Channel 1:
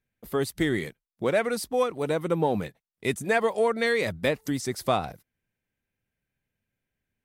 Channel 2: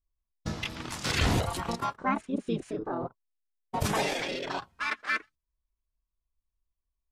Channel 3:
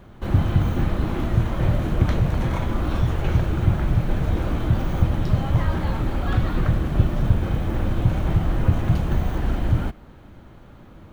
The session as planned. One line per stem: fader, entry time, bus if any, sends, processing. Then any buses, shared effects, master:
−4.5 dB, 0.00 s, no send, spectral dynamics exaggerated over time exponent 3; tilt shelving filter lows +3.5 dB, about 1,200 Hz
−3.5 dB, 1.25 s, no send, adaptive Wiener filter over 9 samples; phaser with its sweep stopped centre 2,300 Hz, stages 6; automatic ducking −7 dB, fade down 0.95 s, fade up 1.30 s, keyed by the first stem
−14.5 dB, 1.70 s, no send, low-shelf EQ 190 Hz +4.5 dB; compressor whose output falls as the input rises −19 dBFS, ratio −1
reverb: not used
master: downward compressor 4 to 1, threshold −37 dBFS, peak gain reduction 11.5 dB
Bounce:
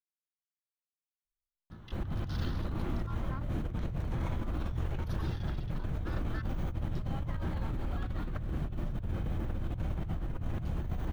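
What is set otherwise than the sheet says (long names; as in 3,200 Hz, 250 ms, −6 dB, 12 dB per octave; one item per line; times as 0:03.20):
stem 1: muted
stem 2 −3.5 dB → −15.0 dB
master: missing downward compressor 4 to 1, threshold −37 dBFS, peak gain reduction 11.5 dB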